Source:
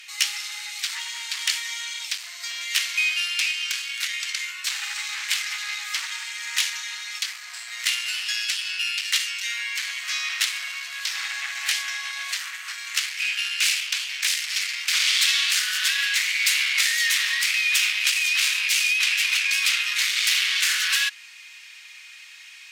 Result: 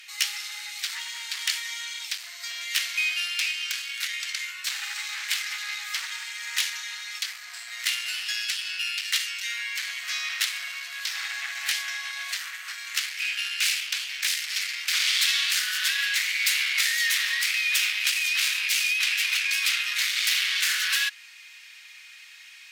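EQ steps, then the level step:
parametric band 1,000 Hz −6 dB 0.94 octaves
parametric band 2,600 Hz −4 dB 1.1 octaves
parametric band 7,300 Hz −6 dB 1.6 octaves
+2.5 dB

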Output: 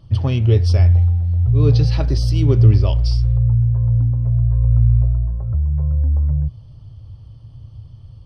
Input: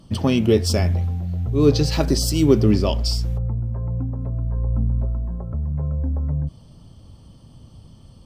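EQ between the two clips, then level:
Savitzky-Golay smoothing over 15 samples
low shelf with overshoot 150 Hz +8.5 dB, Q 3
−4.0 dB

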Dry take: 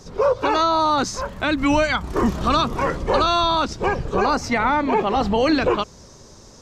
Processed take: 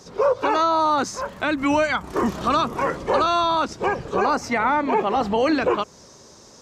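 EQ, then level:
high-pass filter 240 Hz 6 dB per octave
dynamic equaliser 4,100 Hz, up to −6 dB, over −37 dBFS, Q 1.1
0.0 dB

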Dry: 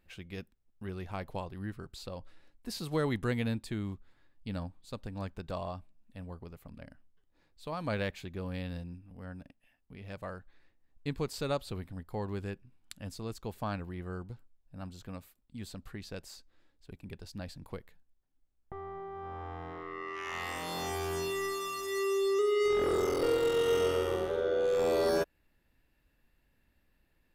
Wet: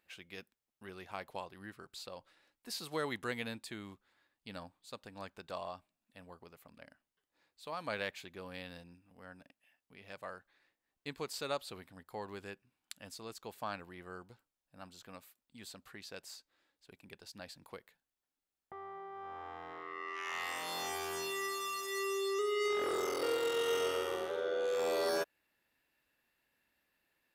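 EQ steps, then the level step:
high-pass filter 780 Hz 6 dB per octave
0.0 dB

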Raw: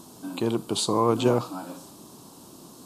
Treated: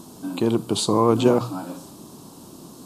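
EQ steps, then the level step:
low-shelf EQ 360 Hz +5.5 dB
mains-hum notches 60/120 Hz
+2.0 dB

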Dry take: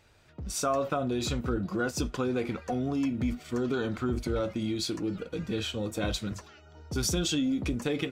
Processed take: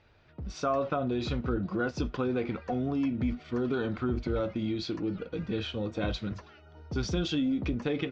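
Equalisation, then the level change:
low-pass filter 6,000 Hz 24 dB per octave
high-frequency loss of the air 150 metres
0.0 dB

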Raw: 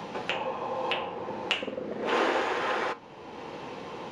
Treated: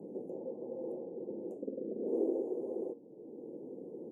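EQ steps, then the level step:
band-pass filter 380–6,200 Hz
inverse Chebyshev band-stop filter 1,300–4,600 Hz, stop band 70 dB
+5.0 dB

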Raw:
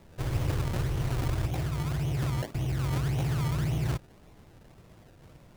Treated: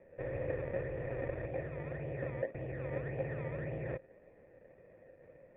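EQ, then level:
formant resonators in series e
high-frequency loss of the air 360 metres
low-shelf EQ 160 Hz −9 dB
+11.5 dB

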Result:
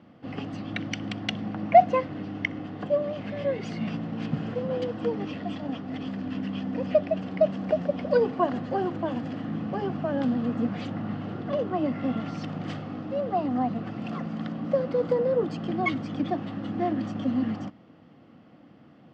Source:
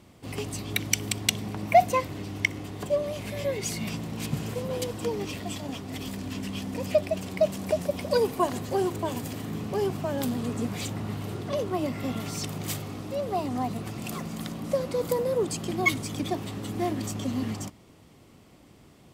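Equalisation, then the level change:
loudspeaker in its box 200–4,000 Hz, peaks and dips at 380 Hz −9 dB, 600 Hz −4 dB, 970 Hz −9 dB, 2,300 Hz −8 dB, 3,800 Hz −8 dB
high-shelf EQ 2,500 Hz −11.5 dB
notch filter 420 Hz, Q 12
+7.0 dB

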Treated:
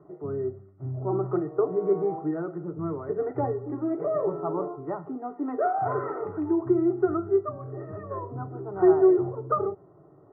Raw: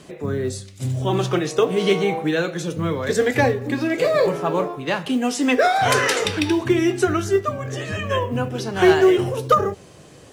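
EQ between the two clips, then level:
Chebyshev low-pass with heavy ripple 1,900 Hz, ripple 9 dB
phaser with its sweep stopped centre 340 Hz, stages 8
0.0 dB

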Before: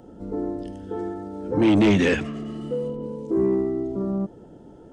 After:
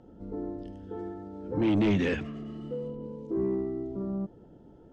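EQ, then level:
low-pass filter 5,300 Hz 12 dB per octave
low-shelf EQ 170 Hz +5.5 dB
−9.0 dB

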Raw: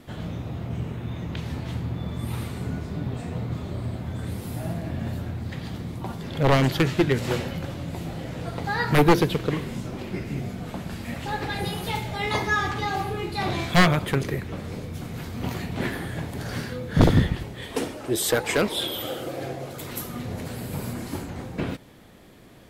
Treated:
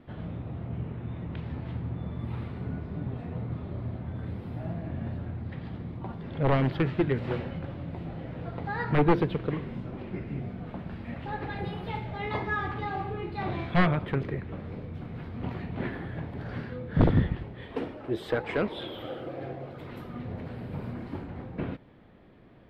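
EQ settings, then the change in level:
high-frequency loss of the air 420 metres
−4.0 dB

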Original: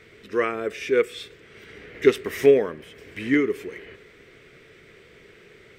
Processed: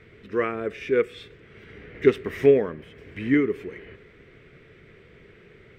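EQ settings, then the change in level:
bass and treble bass +7 dB, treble −12 dB
−2.0 dB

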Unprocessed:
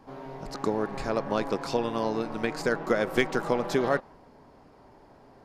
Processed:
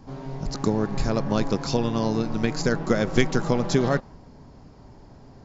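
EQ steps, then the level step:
linear-phase brick-wall low-pass 7,500 Hz
bass and treble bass +14 dB, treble +11 dB
0.0 dB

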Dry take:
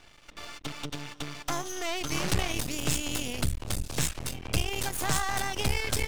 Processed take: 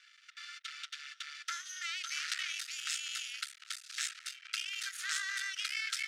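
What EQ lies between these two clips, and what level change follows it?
Chebyshev high-pass with heavy ripple 1,300 Hz, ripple 3 dB
high-frequency loss of the air 50 metres
high-shelf EQ 10,000 Hz −4.5 dB
0.0 dB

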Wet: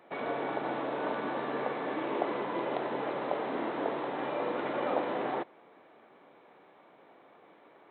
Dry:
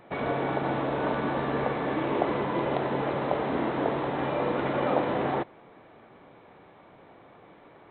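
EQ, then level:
high-pass filter 260 Hz 12 dB per octave
−4.5 dB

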